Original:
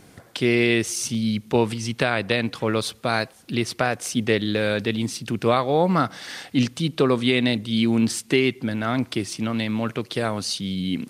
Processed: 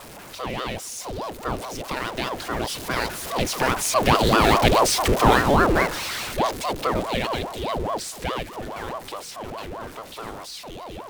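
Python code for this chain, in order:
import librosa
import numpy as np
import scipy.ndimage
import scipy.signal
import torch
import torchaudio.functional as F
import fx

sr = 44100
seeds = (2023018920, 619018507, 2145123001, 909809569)

y = x + 0.5 * 10.0 ** (-23.0 / 20.0) * np.sign(x)
y = fx.doppler_pass(y, sr, speed_mps=18, closest_m=12.0, pass_at_s=4.72)
y = fx.ring_lfo(y, sr, carrier_hz=520.0, swing_pct=75, hz=4.8)
y = y * 10.0 ** (7.0 / 20.0)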